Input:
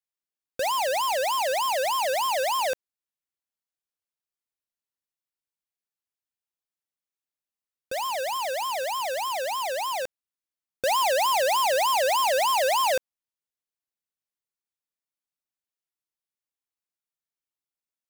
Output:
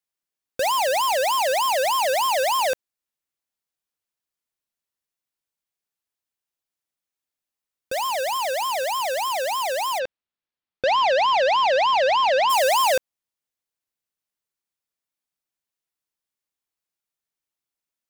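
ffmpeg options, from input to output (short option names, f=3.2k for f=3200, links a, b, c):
-filter_complex "[0:a]asplit=3[a][b][c];[a]afade=t=out:st=9.98:d=0.02[d];[b]lowpass=f=4.4k:w=0.5412,lowpass=f=4.4k:w=1.3066,afade=t=in:st=9.98:d=0.02,afade=t=out:st=12.49:d=0.02[e];[c]afade=t=in:st=12.49:d=0.02[f];[d][e][f]amix=inputs=3:normalize=0,volume=4dB"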